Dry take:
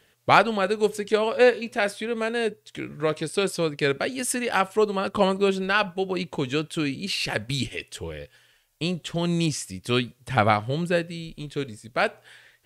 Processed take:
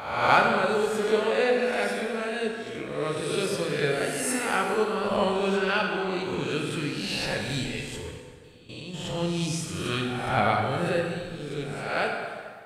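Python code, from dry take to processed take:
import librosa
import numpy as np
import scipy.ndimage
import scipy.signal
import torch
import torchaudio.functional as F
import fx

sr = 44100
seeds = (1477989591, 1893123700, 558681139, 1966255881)

y = fx.spec_swells(x, sr, rise_s=0.93)
y = fx.low_shelf(y, sr, hz=110.0, db=7.0)
y = fx.level_steps(y, sr, step_db=16, at=(8.0, 8.94))
y = fx.rev_plate(y, sr, seeds[0], rt60_s=1.8, hf_ratio=0.75, predelay_ms=0, drr_db=0.5)
y = y * 10.0 ** (-8.0 / 20.0)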